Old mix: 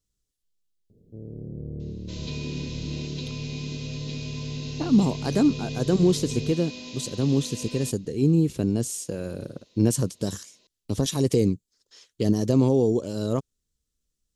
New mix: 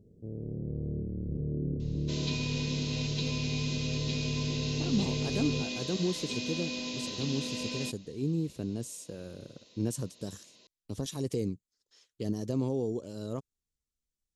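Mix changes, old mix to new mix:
speech −11.0 dB
first sound: entry −0.90 s
second sound +3.0 dB

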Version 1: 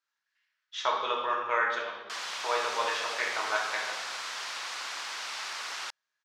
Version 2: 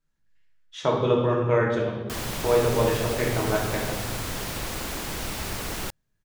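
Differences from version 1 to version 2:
speech −3.0 dB
master: remove Chebyshev band-pass filter 1,100–5,500 Hz, order 2

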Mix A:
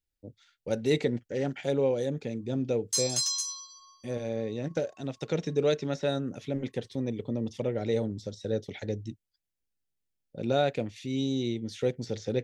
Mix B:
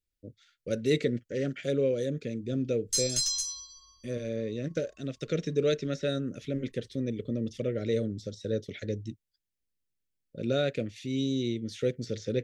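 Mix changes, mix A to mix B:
background: remove high-pass filter 470 Hz 24 dB per octave
master: add Butterworth band-reject 870 Hz, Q 1.3

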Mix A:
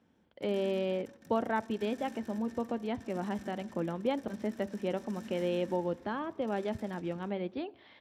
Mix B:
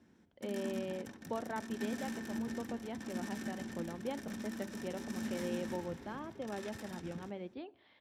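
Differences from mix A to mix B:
speech −8.5 dB
background +7.0 dB

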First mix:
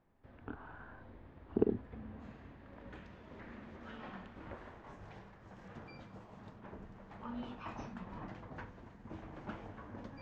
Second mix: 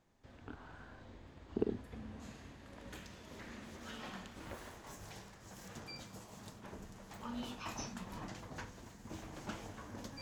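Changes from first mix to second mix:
speech −4.5 dB
master: remove low-pass filter 2,000 Hz 12 dB per octave

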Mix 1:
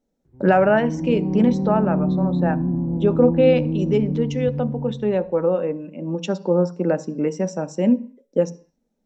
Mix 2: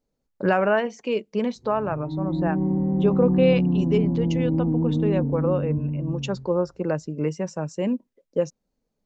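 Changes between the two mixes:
background: entry +1.30 s
reverb: off

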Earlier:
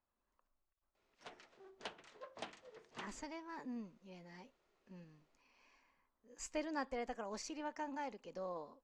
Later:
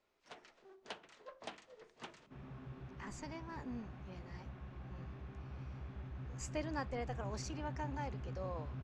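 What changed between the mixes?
first sound: entry −0.95 s
second sound: unmuted

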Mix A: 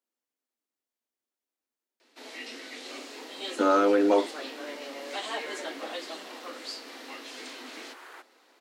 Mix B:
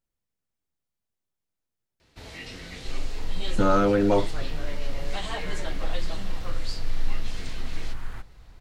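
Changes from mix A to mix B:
second sound: remove Butterworth high-pass 330 Hz 48 dB per octave
master: remove Butterworth high-pass 230 Hz 96 dB per octave

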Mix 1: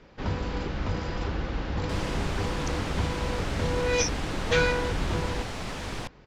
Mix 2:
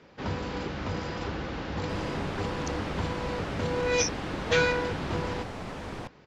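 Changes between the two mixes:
first sound: add high-pass filter 58 Hz
second sound: add high-shelf EQ 2,200 Hz −11.5 dB
master: add low-shelf EQ 66 Hz −10 dB

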